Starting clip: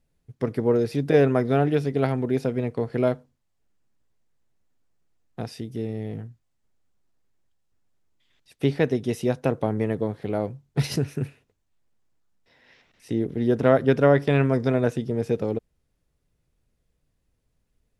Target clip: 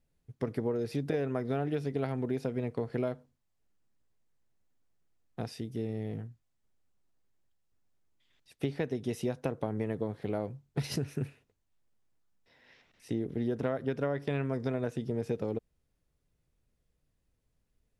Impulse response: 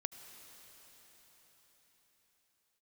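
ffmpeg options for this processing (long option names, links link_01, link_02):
-af "acompressor=threshold=-23dB:ratio=12,volume=-4.5dB"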